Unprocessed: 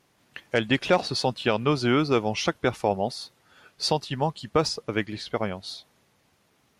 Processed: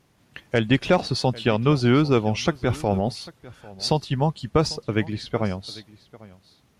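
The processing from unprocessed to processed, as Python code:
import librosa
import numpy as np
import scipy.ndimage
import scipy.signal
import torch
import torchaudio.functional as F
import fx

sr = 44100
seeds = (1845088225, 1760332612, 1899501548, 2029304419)

y = fx.transient(x, sr, attack_db=-4, sustain_db=5, at=(2.53, 3.08), fade=0.02)
y = fx.low_shelf(y, sr, hz=220.0, db=11.0)
y = y + 10.0 ** (-20.5 / 20.0) * np.pad(y, (int(797 * sr / 1000.0), 0))[:len(y)]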